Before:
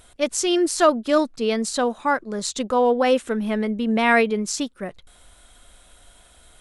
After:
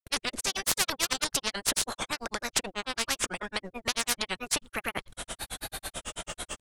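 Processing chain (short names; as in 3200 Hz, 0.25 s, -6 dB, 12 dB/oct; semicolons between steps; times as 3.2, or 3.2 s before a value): added harmonics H 6 -20 dB, 8 -30 dB, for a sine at -5.5 dBFS; grains 82 ms, grains 9.1/s, pitch spread up and down by 3 st; spectral compressor 10:1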